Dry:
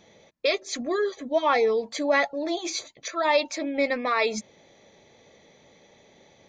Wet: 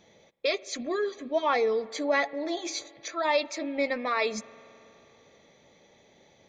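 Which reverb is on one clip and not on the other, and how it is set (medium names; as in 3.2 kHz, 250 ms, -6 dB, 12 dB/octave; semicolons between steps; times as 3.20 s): spring tank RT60 3.2 s, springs 45 ms, chirp 45 ms, DRR 20 dB; trim -3.5 dB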